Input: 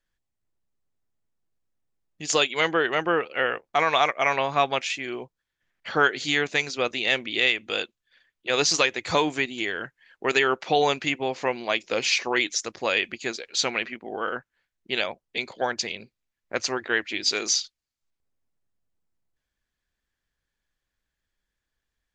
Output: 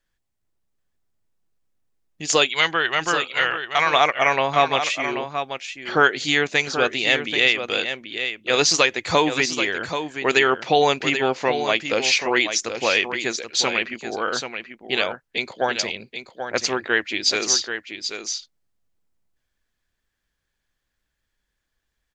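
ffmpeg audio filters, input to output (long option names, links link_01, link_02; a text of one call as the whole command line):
ffmpeg -i in.wav -filter_complex "[0:a]asettb=1/sr,asplit=3[link_01][link_02][link_03];[link_01]atrim=end=2.494[link_04];[link_02]atrim=start=2.49:end=3.9,asetpts=PTS-STARTPTS,afade=type=in:duration=0.004:curve=qsin,afade=type=out:start_time=1.406:duration=0.004:curve=qsin,equalizer=frequency=250:width_type=o:width=1:gain=-9,equalizer=frequency=500:width_type=o:width=1:gain=-7,equalizer=frequency=4000:width_type=o:width=1:gain=6[link_05];[link_03]atrim=start=3.896[link_06];[link_04][link_05]acrossfade=duration=0.004:curve1=hsin:curve2=qsin[link_07];[link_07][link_06]acrossfade=duration=0.004:curve1=qsin:curve2=hsin,aecho=1:1:783:0.376,volume=4dB" out.wav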